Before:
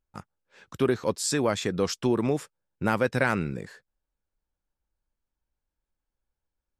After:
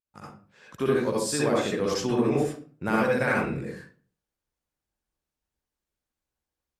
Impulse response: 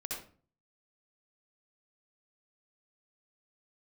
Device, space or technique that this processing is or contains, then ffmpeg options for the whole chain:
far-field microphone of a smart speaker: -filter_complex "[1:a]atrim=start_sample=2205[s0];[0:a][s0]afir=irnorm=-1:irlink=0,highpass=f=110:p=1,dynaudnorm=f=110:g=3:m=2.82,volume=0.422" -ar 48000 -c:a libopus -b:a 48k

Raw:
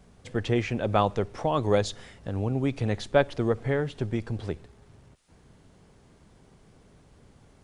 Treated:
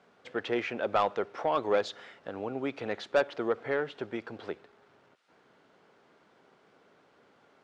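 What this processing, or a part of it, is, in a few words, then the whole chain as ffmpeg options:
intercom: -af "highpass=390,lowpass=3600,equalizer=f=1400:t=o:w=0.25:g=6,asoftclip=type=tanh:threshold=0.141"

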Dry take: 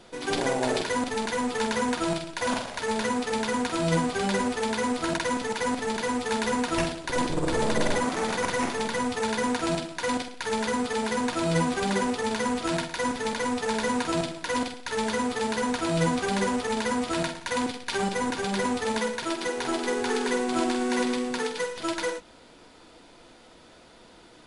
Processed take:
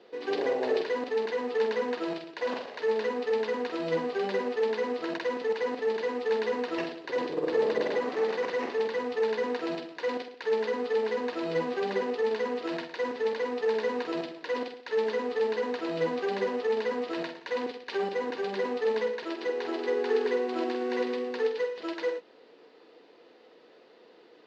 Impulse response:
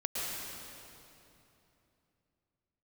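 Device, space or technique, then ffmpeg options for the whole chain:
phone earpiece: -af "highpass=410,equalizer=f=440:t=q:w=4:g=8,equalizer=f=660:t=q:w=4:g=-6,equalizer=f=940:t=q:w=4:g=-7,equalizer=f=1400:t=q:w=4:g=-10,equalizer=f=2300:t=q:w=4:g=-7,equalizer=f=3400:t=q:w=4:g=-9,lowpass=f=3800:w=0.5412,lowpass=f=3800:w=1.3066"

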